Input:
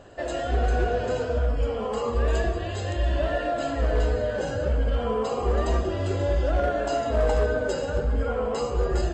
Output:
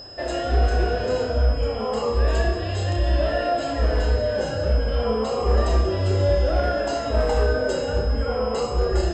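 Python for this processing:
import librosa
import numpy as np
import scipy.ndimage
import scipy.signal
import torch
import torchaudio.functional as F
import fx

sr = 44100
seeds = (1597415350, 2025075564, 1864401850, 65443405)

p1 = x + 10.0 ** (-39.0 / 20.0) * np.sin(2.0 * np.pi * 5100.0 * np.arange(len(x)) / sr)
p2 = p1 + fx.room_flutter(p1, sr, wall_m=5.4, rt60_s=0.3, dry=0)
y = p2 * librosa.db_to_amplitude(1.5)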